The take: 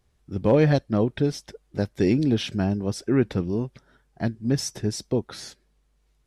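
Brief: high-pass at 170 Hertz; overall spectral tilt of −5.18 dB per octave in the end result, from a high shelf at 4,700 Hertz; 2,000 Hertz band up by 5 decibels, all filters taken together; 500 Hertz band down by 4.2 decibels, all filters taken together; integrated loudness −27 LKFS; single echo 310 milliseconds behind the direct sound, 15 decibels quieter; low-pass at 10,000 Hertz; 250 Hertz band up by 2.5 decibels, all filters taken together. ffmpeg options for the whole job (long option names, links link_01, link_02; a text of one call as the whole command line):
ffmpeg -i in.wav -af "highpass=170,lowpass=10000,equalizer=frequency=250:width_type=o:gain=6.5,equalizer=frequency=500:width_type=o:gain=-8,equalizer=frequency=2000:width_type=o:gain=5.5,highshelf=frequency=4700:gain=7,aecho=1:1:310:0.178,volume=-3dB" out.wav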